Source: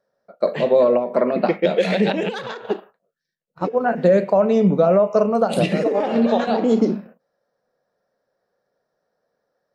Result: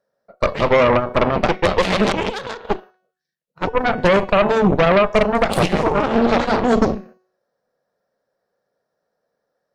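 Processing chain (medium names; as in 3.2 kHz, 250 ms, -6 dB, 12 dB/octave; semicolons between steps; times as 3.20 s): Chebyshev shaper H 6 -9 dB, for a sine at -5 dBFS; de-hum 370.4 Hz, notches 18; trim -1 dB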